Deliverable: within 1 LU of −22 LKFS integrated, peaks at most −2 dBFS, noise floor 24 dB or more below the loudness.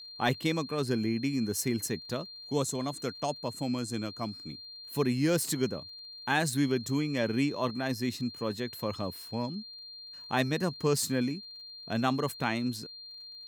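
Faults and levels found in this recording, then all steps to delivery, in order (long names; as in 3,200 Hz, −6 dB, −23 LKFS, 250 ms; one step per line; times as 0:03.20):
crackle rate 35 per second; interfering tone 4,200 Hz; level of the tone −44 dBFS; integrated loudness −31.5 LKFS; sample peak −14.5 dBFS; target loudness −22.0 LKFS
→ click removal
notch filter 4,200 Hz, Q 30
level +9.5 dB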